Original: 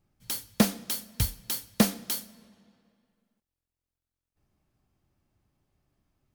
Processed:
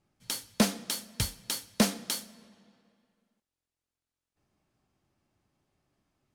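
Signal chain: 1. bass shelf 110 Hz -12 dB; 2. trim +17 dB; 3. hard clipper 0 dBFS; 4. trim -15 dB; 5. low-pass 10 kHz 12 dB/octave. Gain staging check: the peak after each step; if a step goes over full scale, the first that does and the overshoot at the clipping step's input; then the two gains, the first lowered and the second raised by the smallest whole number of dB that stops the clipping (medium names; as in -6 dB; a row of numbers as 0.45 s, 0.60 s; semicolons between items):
-8.5 dBFS, +8.5 dBFS, 0.0 dBFS, -15.0 dBFS, -14.0 dBFS; step 2, 8.5 dB; step 2 +8 dB, step 4 -6 dB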